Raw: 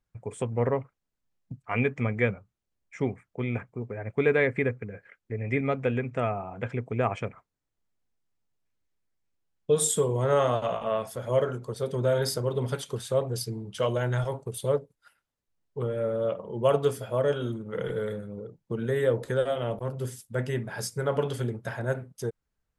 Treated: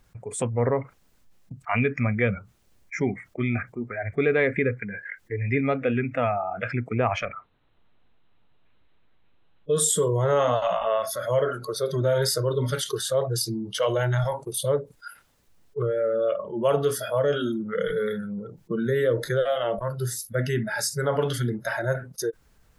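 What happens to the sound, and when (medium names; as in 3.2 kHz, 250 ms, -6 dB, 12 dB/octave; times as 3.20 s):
7.25–9.75 s: rippled Chebyshev low-pass 4 kHz, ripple 3 dB
whole clip: spectral noise reduction 18 dB; level flattener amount 50%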